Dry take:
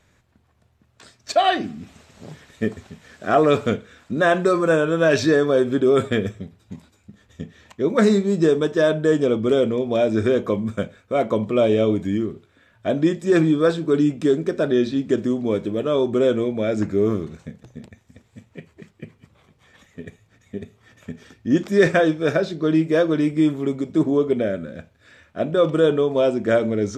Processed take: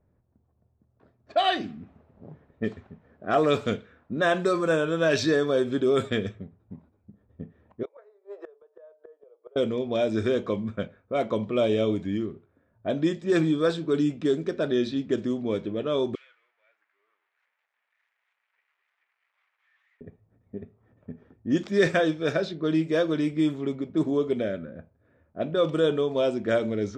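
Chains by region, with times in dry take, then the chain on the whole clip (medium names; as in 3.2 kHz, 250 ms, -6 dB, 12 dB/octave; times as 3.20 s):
7.83–9.56 s: steep high-pass 460 Hz 48 dB/octave + inverted gate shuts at -20 dBFS, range -25 dB
16.15–20.01 s: jump at every zero crossing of -27.5 dBFS + ladder high-pass 1.7 kHz, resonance 40% + flange 1.2 Hz, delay 6.3 ms, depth 9.4 ms, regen -69%
whole clip: level-controlled noise filter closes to 640 Hz, open at -14.5 dBFS; dynamic bell 4 kHz, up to +5 dB, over -45 dBFS, Q 1.1; trim -6 dB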